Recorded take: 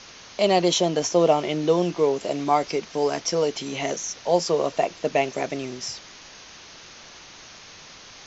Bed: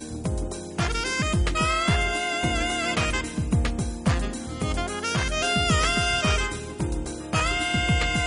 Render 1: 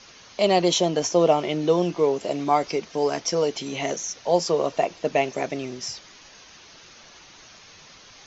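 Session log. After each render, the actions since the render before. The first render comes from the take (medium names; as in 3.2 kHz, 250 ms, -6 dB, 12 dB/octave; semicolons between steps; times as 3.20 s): noise reduction 6 dB, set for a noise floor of -45 dBFS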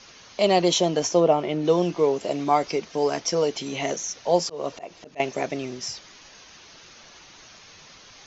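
1.19–1.64 s: treble shelf 2.6 kHz -> 4 kHz -11 dB; 4.38–5.20 s: slow attack 250 ms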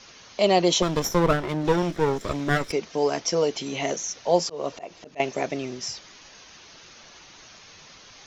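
0.82–2.72 s: comb filter that takes the minimum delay 0.54 ms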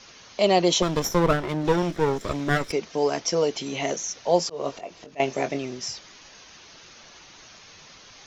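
4.52–5.58 s: doubling 22 ms -8 dB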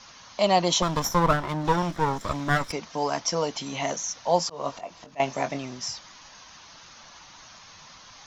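fifteen-band graphic EQ 400 Hz -10 dB, 1 kHz +6 dB, 2.5 kHz -3 dB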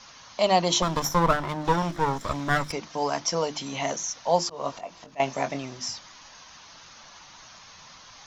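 hum notches 50/100/150/200/250/300/350 Hz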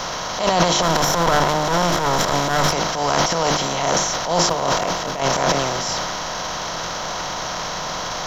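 spectral levelling over time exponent 0.4; transient shaper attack -10 dB, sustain +11 dB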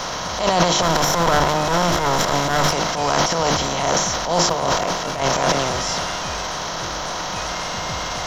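add bed -10.5 dB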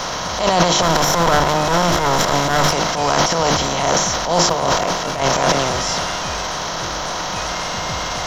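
trim +2.5 dB; peak limiter -3 dBFS, peak gain reduction 2.5 dB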